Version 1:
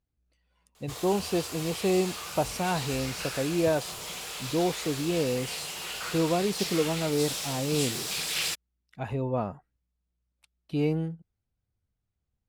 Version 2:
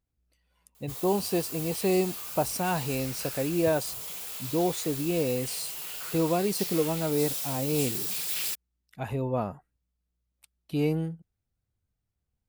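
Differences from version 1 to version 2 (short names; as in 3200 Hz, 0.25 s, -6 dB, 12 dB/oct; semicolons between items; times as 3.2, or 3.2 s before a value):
background -8.0 dB; master: remove air absorption 59 m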